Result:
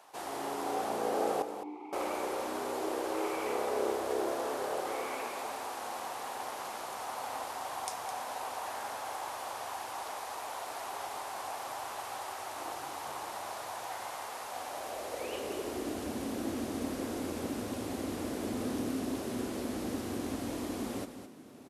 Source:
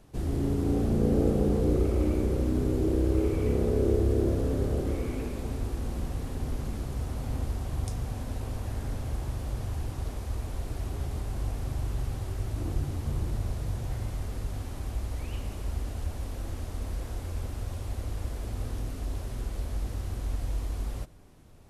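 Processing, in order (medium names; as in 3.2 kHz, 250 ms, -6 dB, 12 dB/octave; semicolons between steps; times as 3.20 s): 1.42–1.93 s: vowel filter u; delay 211 ms -10 dB; high-pass sweep 850 Hz -> 260 Hz, 14.44–16.15 s; trim +4 dB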